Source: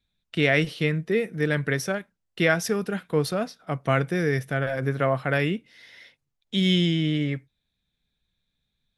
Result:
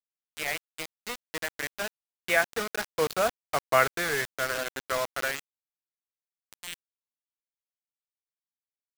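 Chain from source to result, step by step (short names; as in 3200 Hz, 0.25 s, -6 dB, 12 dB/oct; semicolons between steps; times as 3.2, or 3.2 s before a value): Doppler pass-by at 3.39, 18 m/s, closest 11 m; three-band isolator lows -21 dB, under 530 Hz, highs -21 dB, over 3400 Hz; requantised 6-bit, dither none; gain +6 dB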